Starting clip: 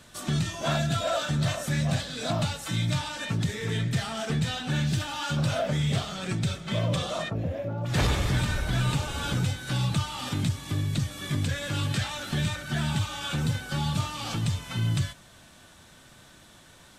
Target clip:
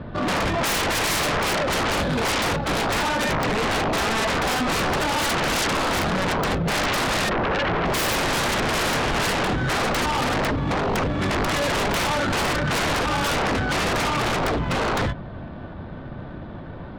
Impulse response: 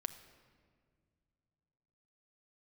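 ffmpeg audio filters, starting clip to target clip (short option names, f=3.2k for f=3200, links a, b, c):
-af "aresample=11025,aresample=44100,adynamicsmooth=sensitivity=3:basefreq=800,aeval=exprs='0.106*sin(PI/2*7.94*val(0)/0.106)':c=same"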